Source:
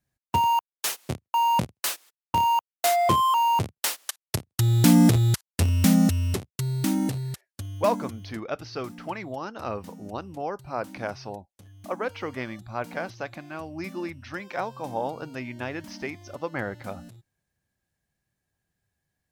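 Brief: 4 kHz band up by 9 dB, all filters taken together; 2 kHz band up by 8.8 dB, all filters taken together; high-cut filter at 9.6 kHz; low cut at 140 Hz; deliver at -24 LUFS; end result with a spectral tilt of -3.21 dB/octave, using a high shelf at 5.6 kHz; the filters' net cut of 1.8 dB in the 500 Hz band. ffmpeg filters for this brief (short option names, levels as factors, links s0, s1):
-af "highpass=140,lowpass=9600,equalizer=f=500:t=o:g=-3.5,equalizer=f=2000:t=o:g=8.5,equalizer=f=4000:t=o:g=5.5,highshelf=f=5600:g=9,volume=1.06"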